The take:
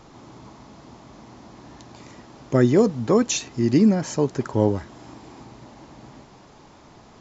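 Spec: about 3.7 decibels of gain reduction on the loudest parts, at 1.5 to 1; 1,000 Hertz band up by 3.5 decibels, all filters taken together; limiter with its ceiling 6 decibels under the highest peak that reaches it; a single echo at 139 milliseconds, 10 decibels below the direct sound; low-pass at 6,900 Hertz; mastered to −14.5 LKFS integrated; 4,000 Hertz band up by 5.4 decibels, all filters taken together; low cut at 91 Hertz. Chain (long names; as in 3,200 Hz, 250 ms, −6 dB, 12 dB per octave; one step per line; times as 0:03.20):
high-pass filter 91 Hz
low-pass filter 6,900 Hz
parametric band 1,000 Hz +4 dB
parametric band 4,000 Hz +7 dB
downward compressor 1.5 to 1, threshold −22 dBFS
brickwall limiter −15 dBFS
single-tap delay 139 ms −10 dB
level +11.5 dB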